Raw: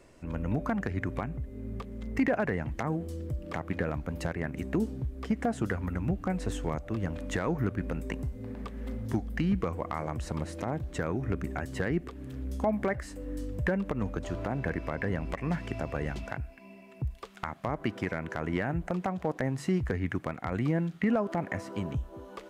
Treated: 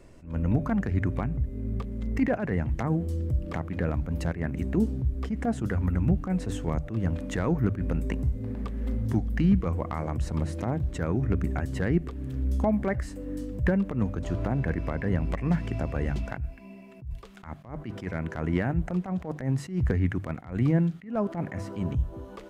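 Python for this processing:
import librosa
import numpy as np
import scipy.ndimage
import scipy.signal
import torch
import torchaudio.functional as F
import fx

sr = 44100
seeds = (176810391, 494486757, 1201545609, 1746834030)

y = fx.low_shelf(x, sr, hz=240.0, db=10.5)
y = fx.hum_notches(y, sr, base_hz=50, count=3)
y = fx.attack_slew(y, sr, db_per_s=150.0)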